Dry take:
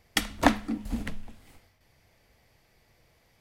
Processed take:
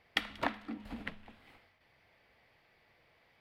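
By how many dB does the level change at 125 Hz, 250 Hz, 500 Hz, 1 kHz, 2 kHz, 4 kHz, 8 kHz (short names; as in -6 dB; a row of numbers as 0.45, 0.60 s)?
-14.5, -14.0, -11.5, -10.5, -6.5, -6.5, -20.5 dB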